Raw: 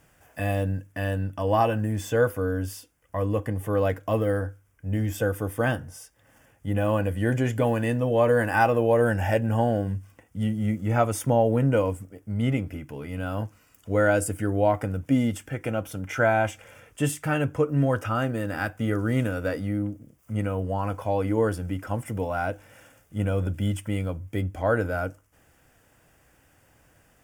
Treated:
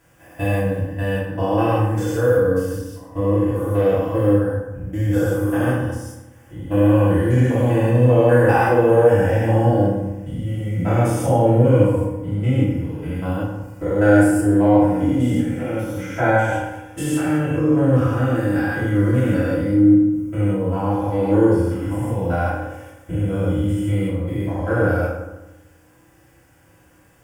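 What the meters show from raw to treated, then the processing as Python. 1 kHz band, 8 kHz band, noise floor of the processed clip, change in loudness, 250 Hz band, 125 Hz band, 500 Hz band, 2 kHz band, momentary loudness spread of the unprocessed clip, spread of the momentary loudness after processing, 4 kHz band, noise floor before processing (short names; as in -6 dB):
+4.5 dB, +1.5 dB, -53 dBFS, +7.5 dB, +9.5 dB, +8.0 dB, +6.5 dB, +3.5 dB, 12 LU, 13 LU, n/a, -62 dBFS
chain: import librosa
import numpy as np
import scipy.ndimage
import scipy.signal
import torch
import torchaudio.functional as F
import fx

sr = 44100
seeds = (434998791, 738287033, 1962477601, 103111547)

y = fx.spec_steps(x, sr, hold_ms=200)
y = fx.rev_fdn(y, sr, rt60_s=1.0, lf_ratio=1.2, hf_ratio=0.6, size_ms=18.0, drr_db=-9.0)
y = y * librosa.db_to_amplitude(-2.5)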